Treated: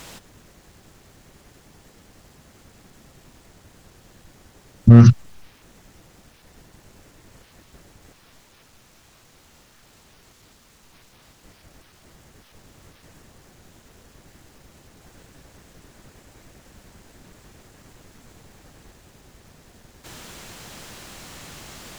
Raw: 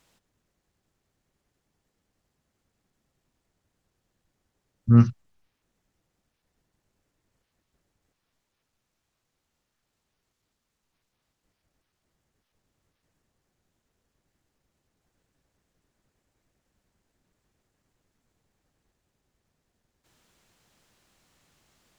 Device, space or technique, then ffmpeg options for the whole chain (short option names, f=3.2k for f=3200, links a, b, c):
loud club master: -af "acompressor=threshold=-18dB:ratio=2.5,asoftclip=type=hard:threshold=-15dB,alimiter=level_in=27dB:limit=-1dB:release=50:level=0:latency=1,volume=-1dB"